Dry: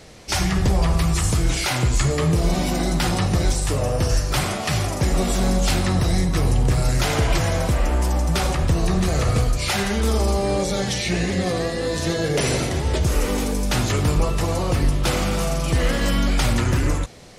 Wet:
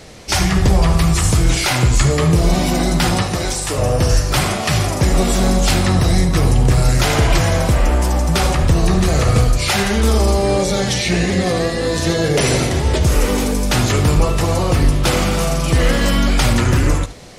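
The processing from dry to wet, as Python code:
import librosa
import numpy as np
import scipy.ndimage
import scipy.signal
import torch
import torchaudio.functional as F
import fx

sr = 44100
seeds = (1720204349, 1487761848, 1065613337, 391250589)

y = fx.low_shelf(x, sr, hz=210.0, db=-11.0, at=(3.22, 3.78))
y = y + 10.0 ** (-15.0 / 20.0) * np.pad(y, (int(73 * sr / 1000.0), 0))[:len(y)]
y = y * 10.0 ** (5.5 / 20.0)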